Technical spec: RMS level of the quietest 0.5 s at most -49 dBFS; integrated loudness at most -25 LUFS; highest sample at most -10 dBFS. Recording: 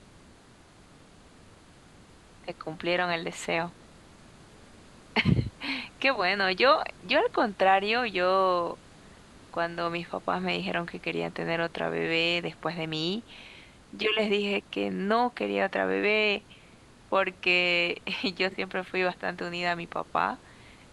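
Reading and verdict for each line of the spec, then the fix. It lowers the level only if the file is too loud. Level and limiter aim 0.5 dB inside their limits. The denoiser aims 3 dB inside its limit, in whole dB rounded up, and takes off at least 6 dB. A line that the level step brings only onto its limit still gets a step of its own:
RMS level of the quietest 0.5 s -55 dBFS: pass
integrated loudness -27.5 LUFS: pass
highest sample -9.0 dBFS: fail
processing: peak limiter -10.5 dBFS

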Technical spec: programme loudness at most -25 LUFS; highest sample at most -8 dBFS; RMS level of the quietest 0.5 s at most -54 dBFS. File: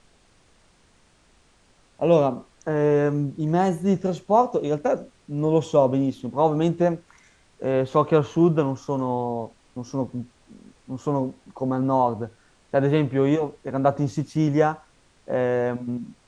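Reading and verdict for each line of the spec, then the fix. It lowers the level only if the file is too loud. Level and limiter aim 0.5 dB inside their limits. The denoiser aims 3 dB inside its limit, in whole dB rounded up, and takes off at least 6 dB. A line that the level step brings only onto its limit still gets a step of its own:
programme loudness -23.5 LUFS: fail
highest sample -5.0 dBFS: fail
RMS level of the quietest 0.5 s -59 dBFS: pass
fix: trim -2 dB; peak limiter -8.5 dBFS

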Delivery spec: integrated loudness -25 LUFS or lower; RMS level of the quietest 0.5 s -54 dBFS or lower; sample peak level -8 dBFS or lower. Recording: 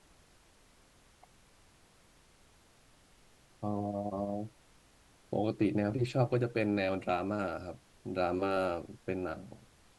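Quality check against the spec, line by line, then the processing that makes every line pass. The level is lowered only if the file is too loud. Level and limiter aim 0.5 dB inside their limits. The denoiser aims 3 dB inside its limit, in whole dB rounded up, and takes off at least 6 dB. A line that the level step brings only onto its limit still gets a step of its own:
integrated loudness -34.0 LUFS: pass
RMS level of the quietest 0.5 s -63 dBFS: pass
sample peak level -15.0 dBFS: pass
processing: none needed

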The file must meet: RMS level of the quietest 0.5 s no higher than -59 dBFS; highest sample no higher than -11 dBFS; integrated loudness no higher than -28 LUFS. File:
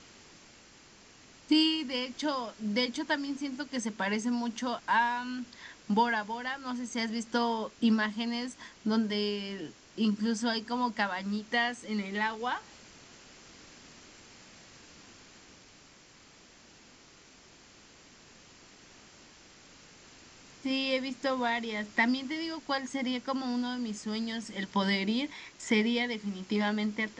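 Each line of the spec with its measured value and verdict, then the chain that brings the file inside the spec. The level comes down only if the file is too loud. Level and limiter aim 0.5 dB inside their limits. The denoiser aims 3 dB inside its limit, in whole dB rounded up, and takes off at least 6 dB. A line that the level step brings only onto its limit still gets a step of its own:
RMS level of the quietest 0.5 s -57 dBFS: fail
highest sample -14.5 dBFS: pass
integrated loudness -31.5 LUFS: pass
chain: noise reduction 6 dB, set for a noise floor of -57 dBFS

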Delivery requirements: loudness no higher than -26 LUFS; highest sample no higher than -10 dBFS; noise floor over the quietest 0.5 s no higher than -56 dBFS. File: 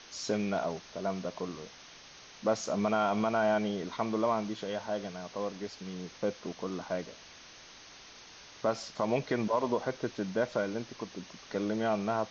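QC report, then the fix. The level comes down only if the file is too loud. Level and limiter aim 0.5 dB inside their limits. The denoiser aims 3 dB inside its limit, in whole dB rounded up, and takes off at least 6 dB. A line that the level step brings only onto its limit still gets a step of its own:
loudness -33.5 LUFS: pass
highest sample -17.0 dBFS: pass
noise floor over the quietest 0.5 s -52 dBFS: fail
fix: noise reduction 7 dB, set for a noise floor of -52 dBFS

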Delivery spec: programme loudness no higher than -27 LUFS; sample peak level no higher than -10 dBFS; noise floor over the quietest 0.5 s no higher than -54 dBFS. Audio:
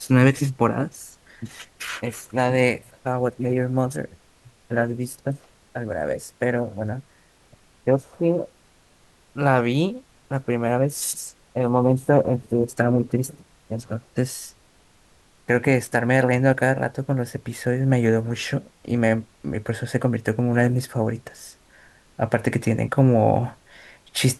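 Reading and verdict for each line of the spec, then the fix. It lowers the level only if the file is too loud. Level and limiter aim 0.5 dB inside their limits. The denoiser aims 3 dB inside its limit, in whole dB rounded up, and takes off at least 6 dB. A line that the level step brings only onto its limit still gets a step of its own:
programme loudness -23.0 LUFS: fail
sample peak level -4.5 dBFS: fail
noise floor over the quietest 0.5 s -57 dBFS: pass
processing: trim -4.5 dB; peak limiter -10.5 dBFS

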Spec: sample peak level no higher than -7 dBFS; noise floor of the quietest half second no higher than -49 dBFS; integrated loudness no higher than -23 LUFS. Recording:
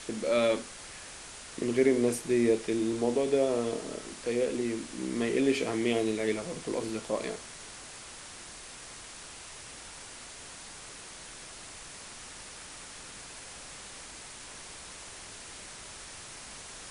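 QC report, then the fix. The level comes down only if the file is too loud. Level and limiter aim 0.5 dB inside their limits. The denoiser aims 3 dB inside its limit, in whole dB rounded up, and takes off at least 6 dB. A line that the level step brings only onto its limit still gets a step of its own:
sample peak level -13.0 dBFS: pass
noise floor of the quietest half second -46 dBFS: fail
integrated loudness -31.5 LUFS: pass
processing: noise reduction 6 dB, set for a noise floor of -46 dBFS

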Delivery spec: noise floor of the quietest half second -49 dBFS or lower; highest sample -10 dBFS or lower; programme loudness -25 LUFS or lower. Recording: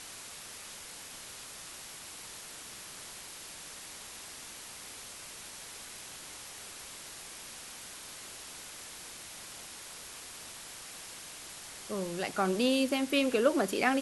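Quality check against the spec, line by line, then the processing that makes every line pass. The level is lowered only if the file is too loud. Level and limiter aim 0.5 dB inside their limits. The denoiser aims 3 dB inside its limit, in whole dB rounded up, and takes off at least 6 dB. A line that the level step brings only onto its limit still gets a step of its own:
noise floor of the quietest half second -47 dBFS: fail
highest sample -13.0 dBFS: pass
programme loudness -37.0 LUFS: pass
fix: noise reduction 6 dB, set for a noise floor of -47 dBFS

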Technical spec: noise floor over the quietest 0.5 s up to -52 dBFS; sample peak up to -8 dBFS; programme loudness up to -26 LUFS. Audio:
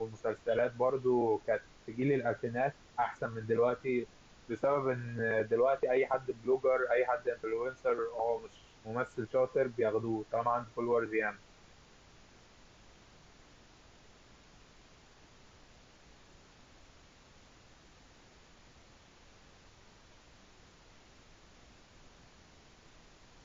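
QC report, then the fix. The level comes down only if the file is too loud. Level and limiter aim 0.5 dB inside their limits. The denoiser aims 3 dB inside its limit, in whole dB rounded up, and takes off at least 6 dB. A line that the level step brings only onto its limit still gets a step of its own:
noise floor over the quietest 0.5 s -60 dBFS: pass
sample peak -19.5 dBFS: pass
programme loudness -33.0 LUFS: pass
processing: none needed

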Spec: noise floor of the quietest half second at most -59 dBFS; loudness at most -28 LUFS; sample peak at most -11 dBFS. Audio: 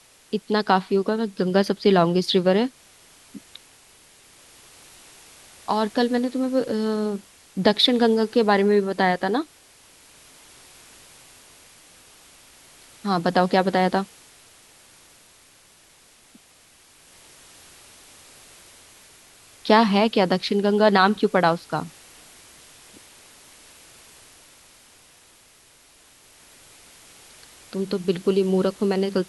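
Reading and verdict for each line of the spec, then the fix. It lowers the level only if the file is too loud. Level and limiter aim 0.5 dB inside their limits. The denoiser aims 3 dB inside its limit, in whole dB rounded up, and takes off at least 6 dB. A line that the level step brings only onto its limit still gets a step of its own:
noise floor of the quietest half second -54 dBFS: fail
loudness -21.5 LUFS: fail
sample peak -5.0 dBFS: fail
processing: trim -7 dB

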